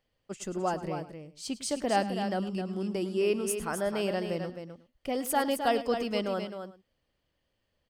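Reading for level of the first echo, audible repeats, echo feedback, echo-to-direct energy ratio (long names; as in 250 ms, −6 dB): −15.5 dB, 3, repeats not evenly spaced, −7.0 dB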